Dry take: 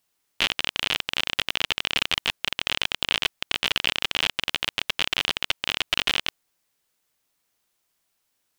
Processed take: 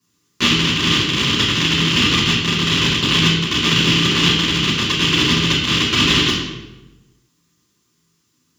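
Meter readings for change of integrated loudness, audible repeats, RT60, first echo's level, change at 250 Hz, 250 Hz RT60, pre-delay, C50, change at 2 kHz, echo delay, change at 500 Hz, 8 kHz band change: +10.0 dB, no echo audible, 1.1 s, no echo audible, +24.0 dB, 1.4 s, 3 ms, 2.0 dB, +8.0 dB, no echo audible, +13.0 dB, +12.0 dB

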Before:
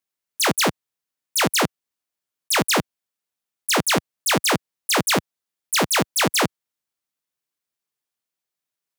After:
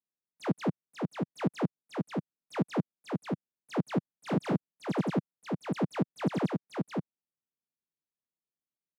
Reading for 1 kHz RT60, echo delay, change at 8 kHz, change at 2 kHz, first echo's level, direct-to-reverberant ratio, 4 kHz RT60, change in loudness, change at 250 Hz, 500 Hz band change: no reverb audible, 537 ms, below −30 dB, −21.0 dB, −3.5 dB, no reverb audible, no reverb audible, −13.5 dB, −3.0 dB, −9.0 dB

